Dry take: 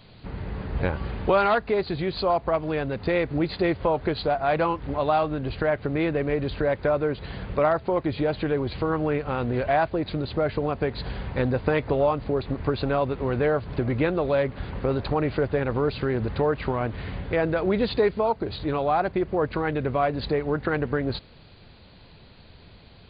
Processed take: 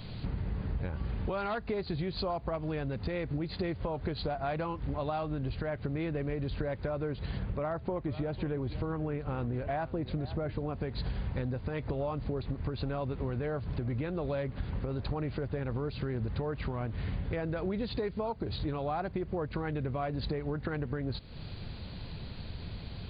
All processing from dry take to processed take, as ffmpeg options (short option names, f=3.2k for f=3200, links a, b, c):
-filter_complex "[0:a]asettb=1/sr,asplit=3[a][b][c];[a]atrim=end=7.394[d];[b]atrim=start=7.39:end=10.74,asetpts=PTS-STARTPTS,afade=t=in:d=0.004:c=qsin,afade=t=out:st=3.346:d=0.004:c=qsin,lowpass=f=2.5k:p=1,aecho=1:1:498:0.126,atrim=end_sample=147735[e];[c]atrim=start=10.736[f];[d][e]acrossfade=d=0.004:c1=hsin:c2=qsin[g];[g][f]acrossfade=d=0.004:c1=qsin:c2=hsin,bass=f=250:g=8,treble=f=4k:g=4,alimiter=limit=-12dB:level=0:latency=1:release=268,acompressor=threshold=-36dB:ratio=4,volume=2.5dB"